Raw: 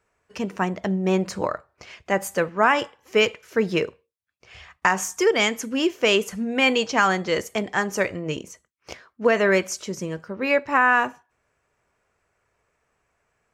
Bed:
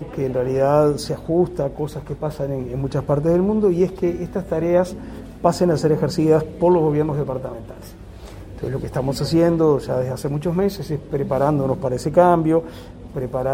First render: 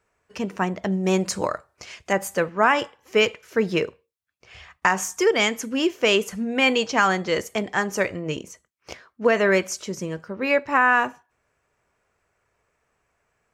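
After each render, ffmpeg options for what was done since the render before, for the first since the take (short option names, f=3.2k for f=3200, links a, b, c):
-filter_complex "[0:a]asettb=1/sr,asplit=3[a][b][c];[a]atrim=end=0.924[d];[b]atrim=start=0.92:end=2.13,asetpts=PTS-STARTPTS,afade=t=in:d=0.004:c=qsin,afade=t=out:st=1.206:d=0.004:c=qsin,equalizer=f=8.9k:t=o:w=1.8:g=10.5[e];[c]atrim=start=2.126[f];[d][e]acrossfade=d=0.004:c1=hsin:c2=qsin[g];[g][f]acrossfade=d=0.004:c1=qsin:c2=hsin"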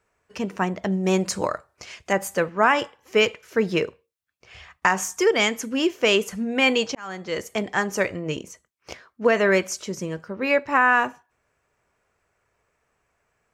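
-filter_complex "[0:a]asplit=2[a][b];[a]atrim=end=6.95,asetpts=PTS-STARTPTS,afade=t=out:st=6.946:d=0.004:c=hsin[c];[b]atrim=start=6.95,asetpts=PTS-STARTPTS,afade=t=in:d=0.66[d];[c][d]concat=n=2:v=0:a=1"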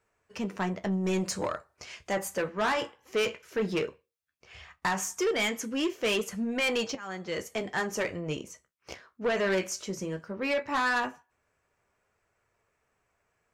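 -af "flanger=delay=8.5:depth=8:regen=-54:speed=0.16:shape=triangular,asoftclip=type=tanh:threshold=-22.5dB"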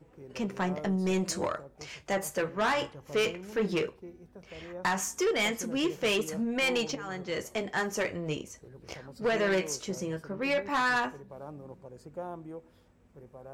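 -filter_complex "[1:a]volume=-26dB[a];[0:a][a]amix=inputs=2:normalize=0"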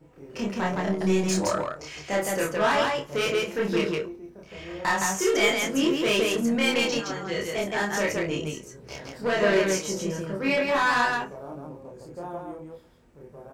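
-filter_complex "[0:a]asplit=2[a][b];[b]adelay=26,volume=-5dB[c];[a][c]amix=inputs=2:normalize=0,aecho=1:1:29.15|166.2:1|0.891"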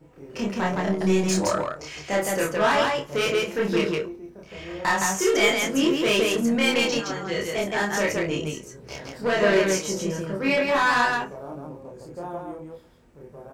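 -af "volume=2dB"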